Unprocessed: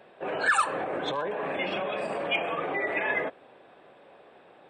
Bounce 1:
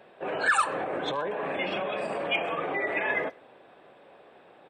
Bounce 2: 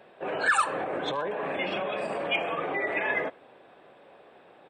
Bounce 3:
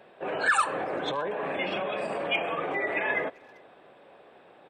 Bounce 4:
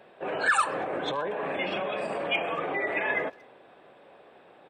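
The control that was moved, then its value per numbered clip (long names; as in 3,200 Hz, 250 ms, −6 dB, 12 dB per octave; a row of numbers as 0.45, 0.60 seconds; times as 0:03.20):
far-end echo of a speakerphone, delay time: 130, 80, 390, 230 milliseconds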